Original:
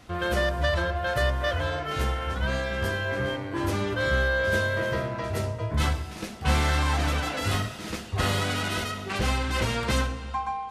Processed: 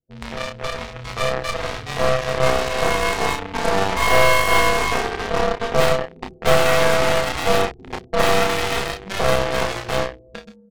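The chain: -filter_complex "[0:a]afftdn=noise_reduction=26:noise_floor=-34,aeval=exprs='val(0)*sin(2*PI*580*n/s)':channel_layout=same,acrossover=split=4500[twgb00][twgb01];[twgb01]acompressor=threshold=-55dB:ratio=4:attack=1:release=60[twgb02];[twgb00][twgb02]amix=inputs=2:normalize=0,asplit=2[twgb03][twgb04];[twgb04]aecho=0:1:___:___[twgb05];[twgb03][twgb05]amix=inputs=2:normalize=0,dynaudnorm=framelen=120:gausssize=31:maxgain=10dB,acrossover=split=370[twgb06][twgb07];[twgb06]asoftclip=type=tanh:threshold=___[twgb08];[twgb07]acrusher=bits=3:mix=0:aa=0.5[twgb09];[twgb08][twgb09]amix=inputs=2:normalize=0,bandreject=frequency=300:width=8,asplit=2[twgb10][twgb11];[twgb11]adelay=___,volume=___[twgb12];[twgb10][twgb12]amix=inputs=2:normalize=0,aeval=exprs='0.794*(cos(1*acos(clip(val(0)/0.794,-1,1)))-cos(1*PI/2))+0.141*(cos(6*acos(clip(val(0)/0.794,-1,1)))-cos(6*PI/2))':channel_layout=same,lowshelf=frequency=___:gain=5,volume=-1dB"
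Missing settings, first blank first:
435, 0.0794, -31dB, 31, -4dB, 130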